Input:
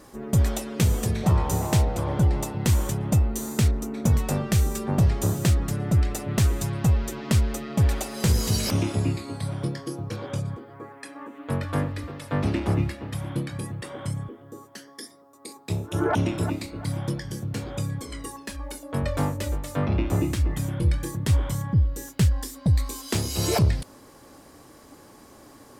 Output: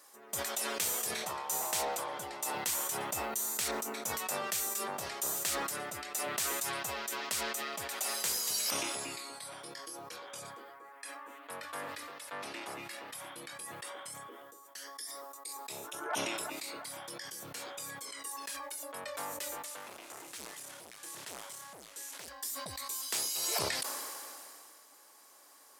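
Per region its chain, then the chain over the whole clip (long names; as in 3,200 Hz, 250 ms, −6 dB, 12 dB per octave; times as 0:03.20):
0:19.65–0:22.28: linear delta modulator 64 kbit/s, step −37.5 dBFS + hard clipping −25.5 dBFS + downward compressor 2.5 to 1, threshold −31 dBFS
whole clip: high-pass filter 770 Hz 12 dB per octave; high-shelf EQ 5,900 Hz +9.5 dB; level that may fall only so fast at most 22 dB per second; level −8.5 dB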